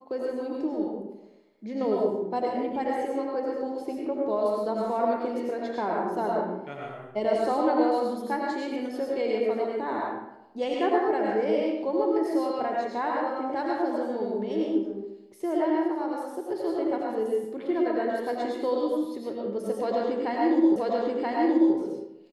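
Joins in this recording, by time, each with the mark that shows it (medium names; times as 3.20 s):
20.76 s: repeat of the last 0.98 s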